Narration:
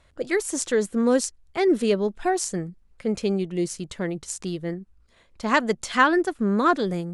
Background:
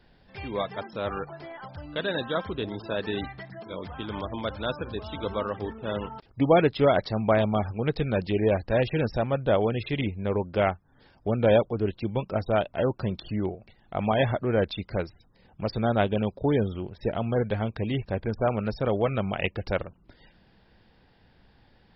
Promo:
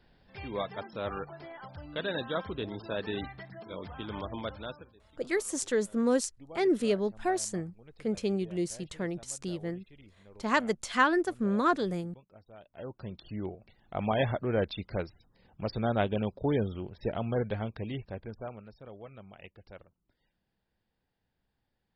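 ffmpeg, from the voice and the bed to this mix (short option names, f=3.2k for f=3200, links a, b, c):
-filter_complex "[0:a]adelay=5000,volume=-6dB[a];[1:a]volume=19dB,afade=t=out:st=4.38:d=0.55:silence=0.0668344,afade=t=in:st=12.59:d=1.28:silence=0.0668344,afade=t=out:st=17.35:d=1.33:silence=0.133352[b];[a][b]amix=inputs=2:normalize=0"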